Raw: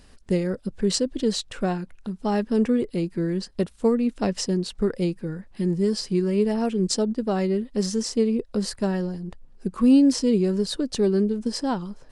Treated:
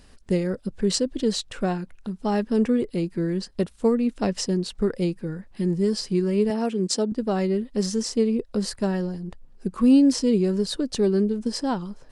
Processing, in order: 6.5–7.12 HPF 180 Hz

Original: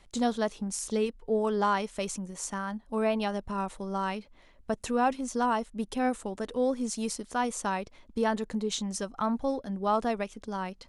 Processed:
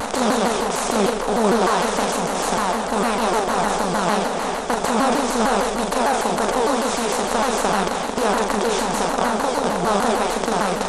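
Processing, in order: per-bin compression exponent 0.2; flutter echo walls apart 7.2 m, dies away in 0.64 s; shaped vibrato saw down 6.6 Hz, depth 250 cents; gain -1 dB

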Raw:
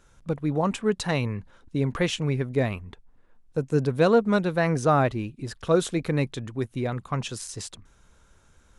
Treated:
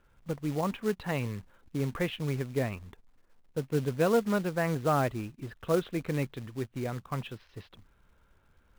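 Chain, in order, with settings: inverse Chebyshev low-pass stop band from 7500 Hz, stop band 50 dB; short-mantissa float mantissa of 2-bit; gain -6 dB

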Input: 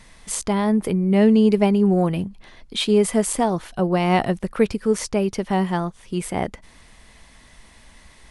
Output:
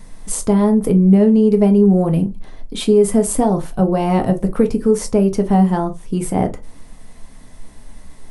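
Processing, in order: bell 2700 Hz -12.5 dB 2.8 oct; compressor, threshold -18 dBFS, peak gain reduction 6.5 dB; on a send: reverb RT60 0.20 s, pre-delay 4 ms, DRR 5 dB; on the sum: gain +7.5 dB

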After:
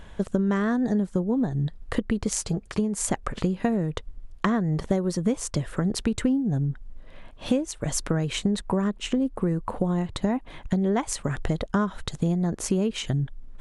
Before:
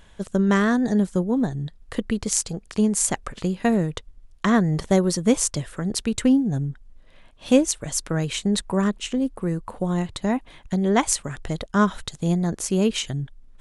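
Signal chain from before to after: high shelf 2500 Hz -9.5 dB; compressor 6:1, threshold -29 dBFS, peak gain reduction 17 dB; 2.35–2.98 notch comb 250 Hz; gain +7.5 dB

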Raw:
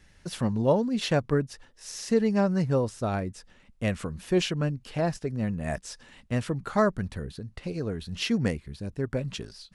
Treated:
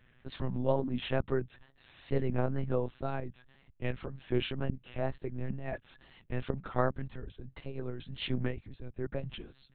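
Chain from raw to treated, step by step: monotone LPC vocoder at 8 kHz 130 Hz; wow and flutter 84 cents; gain -6 dB

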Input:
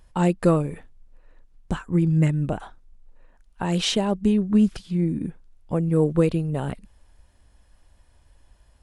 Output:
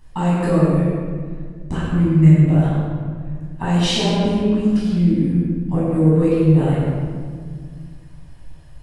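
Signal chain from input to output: compressor 2.5:1, threshold -27 dBFS, peak gain reduction 9.5 dB; reverb RT60 1.9 s, pre-delay 13 ms, DRR -9.5 dB; gain -2.5 dB

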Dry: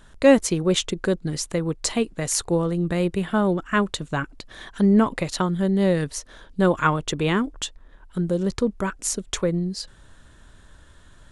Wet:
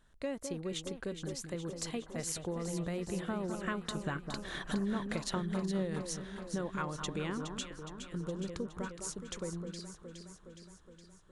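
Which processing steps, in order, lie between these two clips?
Doppler pass-by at 5, 5 m/s, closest 3.6 m; compressor 6:1, threshold -34 dBFS, peak gain reduction 19 dB; echo with dull and thin repeats by turns 0.208 s, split 1400 Hz, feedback 79%, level -6.5 dB

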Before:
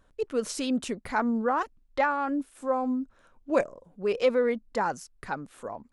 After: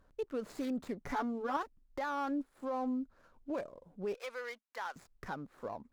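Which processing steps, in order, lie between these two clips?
median filter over 15 samples; 4.14–4.96 HPF 1200 Hz 12 dB/oct; in parallel at 0 dB: compressor, threshold -37 dBFS, peak gain reduction 17.5 dB; on the sum: limiter -21 dBFS, peak gain reduction 10 dB; 1–1.57 comb 7 ms, depth 98%; added harmonics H 4 -30 dB, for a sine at -15 dBFS; gain -8.5 dB

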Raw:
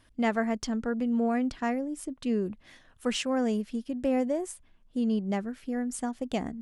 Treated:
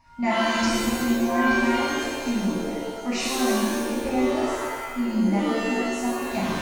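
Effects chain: whine 940 Hz -59 dBFS; fixed phaser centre 2200 Hz, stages 8; shimmer reverb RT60 1.4 s, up +7 st, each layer -2 dB, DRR -8 dB

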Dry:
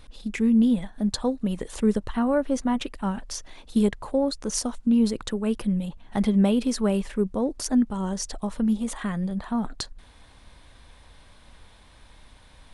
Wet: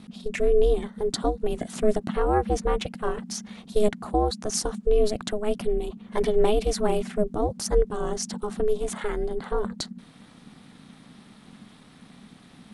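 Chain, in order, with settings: ring modulator 210 Hz; gain +3.5 dB

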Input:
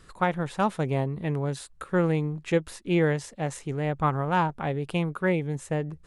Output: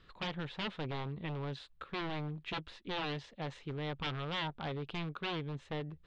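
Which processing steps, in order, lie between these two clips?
wavefolder -24 dBFS; ladder low-pass 4200 Hz, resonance 45%

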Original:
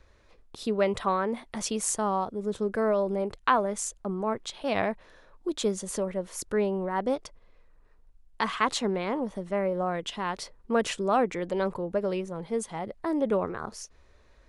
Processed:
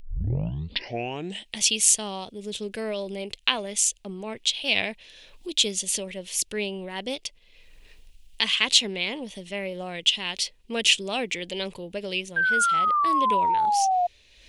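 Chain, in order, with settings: tape start at the beginning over 1.58 s; resonant high shelf 1900 Hz +14 dB, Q 3; painted sound fall, 12.36–14.07, 700–1600 Hz -18 dBFS; upward compressor, threshold -33 dBFS; gain -4 dB

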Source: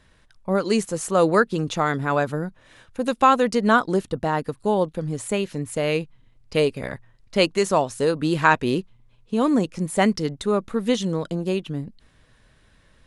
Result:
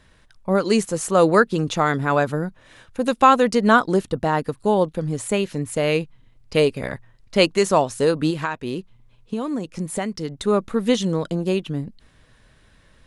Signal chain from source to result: 8.3–10.47 compressor 5:1, threshold -26 dBFS, peak gain reduction 14 dB; gain +2.5 dB

